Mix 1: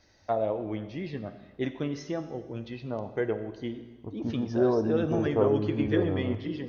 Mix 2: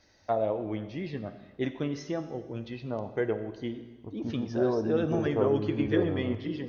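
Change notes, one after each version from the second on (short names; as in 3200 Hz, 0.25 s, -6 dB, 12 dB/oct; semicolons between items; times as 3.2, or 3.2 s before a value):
second voice -3.0 dB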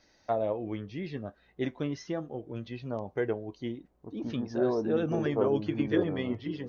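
second voice: add bell 90 Hz -12.5 dB 0.53 oct; reverb: off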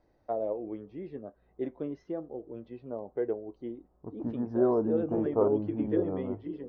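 first voice: add band-pass 430 Hz, Q 1.2; second voice +3.0 dB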